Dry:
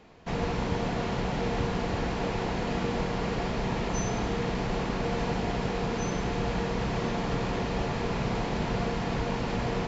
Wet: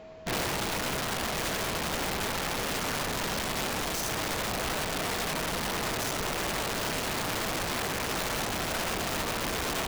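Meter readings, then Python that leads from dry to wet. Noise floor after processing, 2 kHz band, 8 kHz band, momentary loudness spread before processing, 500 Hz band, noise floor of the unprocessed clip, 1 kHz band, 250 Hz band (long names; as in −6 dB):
−33 dBFS, +4.5 dB, can't be measured, 1 LU, −3.5 dB, −32 dBFS, 0.0 dB, −6.0 dB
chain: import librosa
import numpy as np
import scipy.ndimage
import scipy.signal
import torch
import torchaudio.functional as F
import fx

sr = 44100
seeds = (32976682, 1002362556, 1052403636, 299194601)

y = (np.mod(10.0 ** (26.0 / 20.0) * x + 1.0, 2.0) - 1.0) / 10.0 ** (26.0 / 20.0)
y = fx.rider(y, sr, range_db=3, speed_s=0.5)
y = y + 10.0 ** (-46.0 / 20.0) * np.sin(2.0 * np.pi * 640.0 * np.arange(len(y)) / sr)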